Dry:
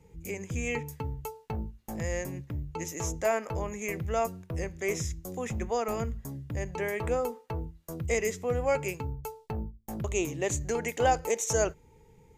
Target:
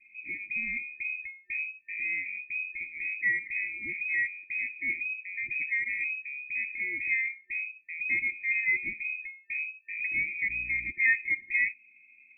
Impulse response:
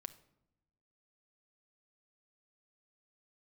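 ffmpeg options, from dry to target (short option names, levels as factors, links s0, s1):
-filter_complex "[0:a]lowpass=f=2200:t=q:w=0.5098,lowpass=f=2200:t=q:w=0.6013,lowpass=f=2200:t=q:w=0.9,lowpass=f=2200:t=q:w=2.563,afreqshift=-2600,asettb=1/sr,asplit=3[s0][s1][s2];[s0]atrim=end=10.494[s3];[s1]atrim=start=10.49:end=10.92,asetpts=PTS-STARTPTS,afade=t=in:d=0.004:c=qsin,afade=t=out:st=0.426:d=0.004:c=qsin,aeval=exprs='val(0)+0.00355*(sin(2*PI*60*n/s)+sin(2*PI*2*60*n/s)/2+sin(2*PI*3*60*n/s)/3+sin(2*PI*4*60*n/s)/4+sin(2*PI*5*60*n/s)/5)':c=same[s4];[s2]atrim=start=10.916[s5];[s3][s4]acrossfade=d=0.004:c1=hsin:c2=qsin[s6];[s6][s5]acrossfade=d=0.004:c1=qsin:c2=hsin,afftfilt=real='re*(1-between(b*sr/4096,370,1800))':imag='im*(1-between(b*sr/4096,370,1800))':win_size=4096:overlap=0.75"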